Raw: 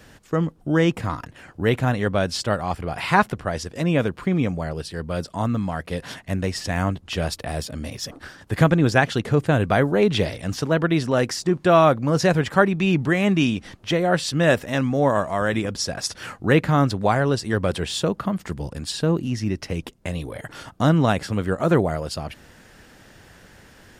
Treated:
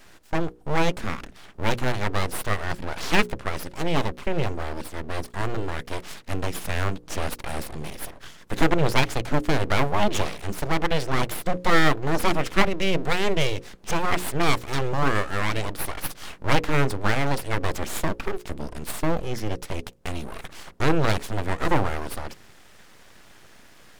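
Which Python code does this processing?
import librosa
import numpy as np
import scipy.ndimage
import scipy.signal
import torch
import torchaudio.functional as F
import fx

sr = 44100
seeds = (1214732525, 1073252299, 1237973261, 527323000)

y = np.abs(x)
y = fx.hum_notches(y, sr, base_hz=60, count=9)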